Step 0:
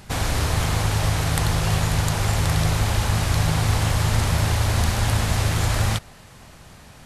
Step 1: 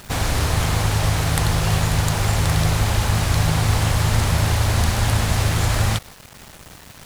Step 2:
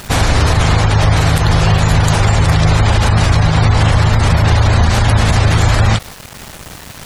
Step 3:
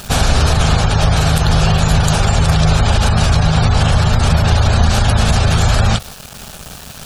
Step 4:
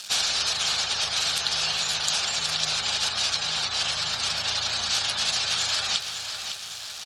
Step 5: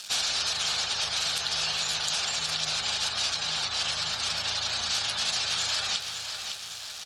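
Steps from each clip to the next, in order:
bit-crush 7-bit; gain +2 dB
spectral gate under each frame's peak -30 dB strong; maximiser +11 dB; gain -1 dB
thirty-one-band EQ 100 Hz -7 dB, 315 Hz -10 dB, 500 Hz -3 dB, 1000 Hz -6 dB, 2000 Hz -10 dB; gain +1 dB
band-pass 4600 Hz, Q 1.3; on a send: feedback echo 0.557 s, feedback 51%, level -8.5 dB
in parallel at -2 dB: limiter -16.5 dBFS, peak gain reduction 9.5 dB; on the sum: FDN reverb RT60 1.8 s, high-frequency decay 0.4×, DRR 14.5 dB; gain -7.5 dB

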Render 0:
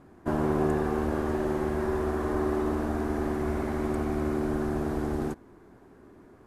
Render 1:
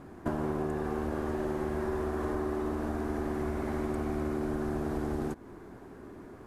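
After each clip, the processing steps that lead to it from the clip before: compressor 6:1, threshold -35 dBFS, peak gain reduction 13.5 dB; gain +5.5 dB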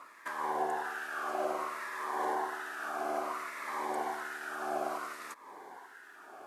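LFO high-pass sine 1.2 Hz 720–1600 Hz; cascading phaser falling 0.58 Hz; gain +4.5 dB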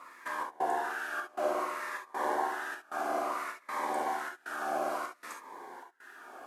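step gate "xxxxx..xx" 175 bpm -24 dB; non-linear reverb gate 90 ms flat, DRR 1 dB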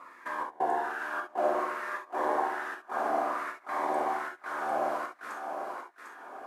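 high shelf 2800 Hz -11 dB; thinning echo 0.75 s, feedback 20%, high-pass 420 Hz, level -5.5 dB; gain +3 dB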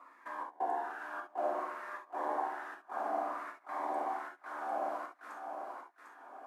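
rippled Chebyshev high-pass 200 Hz, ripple 6 dB; gain -5 dB

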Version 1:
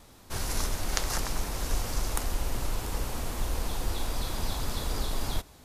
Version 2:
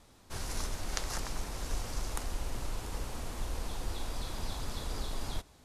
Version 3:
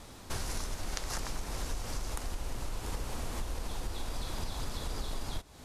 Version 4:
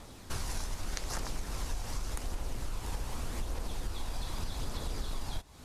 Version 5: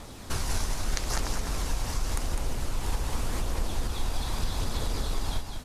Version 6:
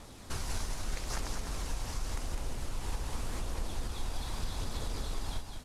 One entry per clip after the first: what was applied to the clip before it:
LPF 11000 Hz 12 dB/oct; gain -6 dB
compressor 6:1, threshold -43 dBFS, peak gain reduction 14 dB; gain +10.5 dB
phaser 0.84 Hz, delay 1.3 ms, feedback 24%; gain -1.5 dB
echo 0.203 s -6 dB; gain +6 dB
CVSD 64 kbps; gain -6.5 dB

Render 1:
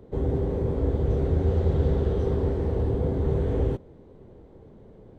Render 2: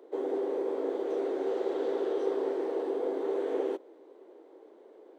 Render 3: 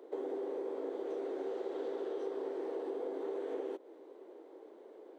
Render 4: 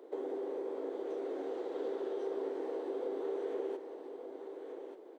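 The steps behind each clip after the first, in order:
elliptic high-pass 320 Hz, stop band 60 dB
compressor 4:1, threshold -37 dBFS, peak gain reduction 10.5 dB
echo 1.184 s -7.5 dB

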